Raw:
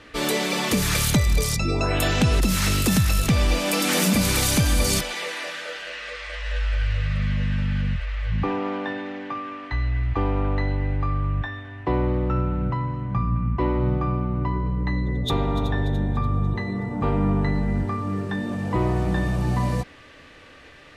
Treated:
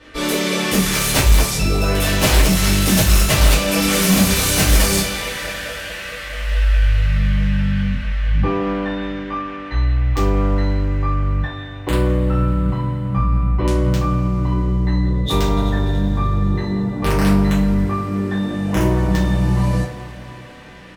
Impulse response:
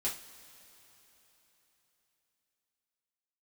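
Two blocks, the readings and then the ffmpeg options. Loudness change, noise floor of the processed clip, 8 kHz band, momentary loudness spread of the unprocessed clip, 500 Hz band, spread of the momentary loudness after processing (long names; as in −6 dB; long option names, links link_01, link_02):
+6.0 dB, −32 dBFS, +6.5 dB, 10 LU, +5.0 dB, 11 LU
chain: -filter_complex "[0:a]aeval=exprs='(mod(4.22*val(0)+1,2)-1)/4.22':channel_layout=same,asplit=2[link_01][link_02];[link_02]adelay=170,highpass=300,lowpass=3400,asoftclip=type=hard:threshold=-22dB,volume=-11dB[link_03];[link_01][link_03]amix=inputs=2:normalize=0[link_04];[1:a]atrim=start_sample=2205,asetrate=33075,aresample=44100[link_05];[link_04][link_05]afir=irnorm=-1:irlink=0,volume=-1dB"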